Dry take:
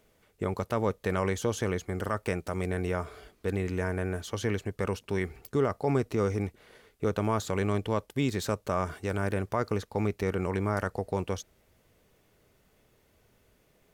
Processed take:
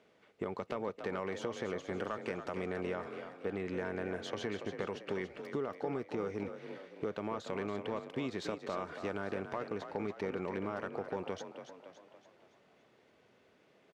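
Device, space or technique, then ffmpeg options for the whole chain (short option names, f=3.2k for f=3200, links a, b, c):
AM radio: -filter_complex "[0:a]highpass=200,lowpass=3.9k,acompressor=threshold=-34dB:ratio=6,asoftclip=type=tanh:threshold=-25dB,asettb=1/sr,asplit=3[a][b][c];[a]atrim=end=3.084[d];[b]atrim=start=3.08:end=3.55,asetpts=PTS-STARTPTS,afade=t=in:d=0.004:c=qsin,afade=t=out:st=0.466:d=0.004:c=qsin,equalizer=f=4.9k:w=0.86:g=-6[e];[c]atrim=start=3.546[f];[d][e]acrossfade=d=0.004:c1=hsin:c2=qsin[g];[g][f]acrossfade=d=0.004:c1=qsin:c2=hsin,asplit=7[h][i][j][k][l][m][n];[i]adelay=282,afreqshift=40,volume=-9dB[o];[j]adelay=564,afreqshift=80,volume=-15.2dB[p];[k]adelay=846,afreqshift=120,volume=-21.4dB[q];[l]adelay=1128,afreqshift=160,volume=-27.6dB[r];[m]adelay=1410,afreqshift=200,volume=-33.8dB[s];[n]adelay=1692,afreqshift=240,volume=-40dB[t];[h][o][p][q][r][s][t]amix=inputs=7:normalize=0,volume=1dB"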